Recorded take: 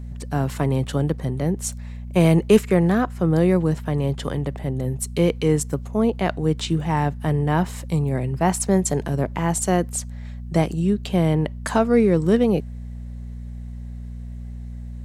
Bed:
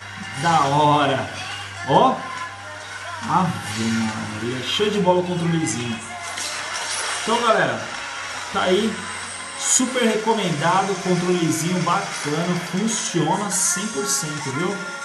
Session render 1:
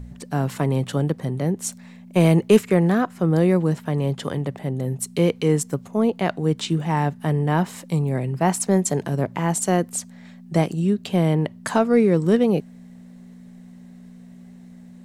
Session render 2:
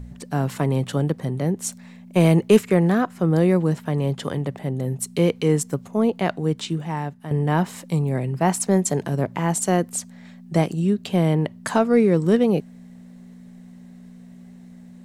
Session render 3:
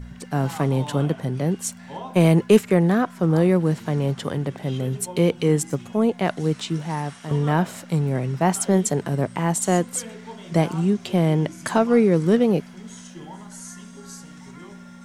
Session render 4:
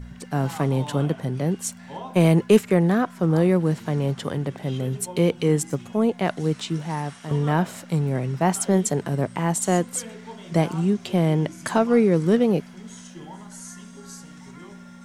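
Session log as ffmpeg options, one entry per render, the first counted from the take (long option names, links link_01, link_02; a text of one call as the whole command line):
ffmpeg -i in.wav -af "bandreject=frequency=60:width_type=h:width=4,bandreject=frequency=120:width_type=h:width=4" out.wav
ffmpeg -i in.wav -filter_complex "[0:a]asplit=2[link_01][link_02];[link_01]atrim=end=7.31,asetpts=PTS-STARTPTS,afade=type=out:start_time=6.26:duration=1.05:silence=0.281838[link_03];[link_02]atrim=start=7.31,asetpts=PTS-STARTPTS,afade=type=in:duration=0.004:curve=hsin:silence=0.281838[link_04];[link_03][link_04]concat=n=2:v=0:a=1" out.wav
ffmpeg -i in.wav -i bed.wav -filter_complex "[1:a]volume=-20.5dB[link_01];[0:a][link_01]amix=inputs=2:normalize=0" out.wav
ffmpeg -i in.wav -af "volume=-1dB" out.wav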